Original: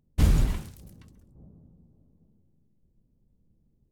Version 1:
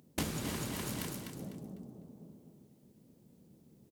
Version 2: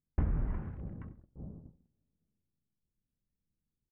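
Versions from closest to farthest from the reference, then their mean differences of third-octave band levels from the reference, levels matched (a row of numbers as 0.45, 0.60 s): 2, 1; 8.5, 16.0 dB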